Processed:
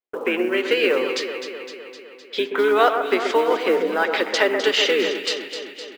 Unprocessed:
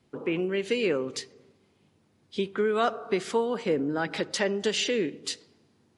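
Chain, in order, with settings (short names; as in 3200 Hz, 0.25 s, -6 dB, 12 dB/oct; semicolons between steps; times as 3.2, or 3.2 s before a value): HPF 390 Hz 24 dB/oct; gate -58 dBFS, range -39 dB; LPF 3100 Hz 12 dB/oct; high shelf 2400 Hz +6.5 dB; in parallel at 0 dB: compressor 20:1, threshold -38 dBFS, peak gain reduction 19 dB; on the sum: wow and flutter 28 cents; short-mantissa float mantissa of 4-bit; spring tank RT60 1.6 s, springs 42/55 ms, chirp 40 ms, DRR 19.5 dB; harmoniser -7 st -12 dB; on a send: echo with dull and thin repeats by turns 0.128 s, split 2200 Hz, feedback 78%, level -7 dB; on the sum: gain +6.5 dB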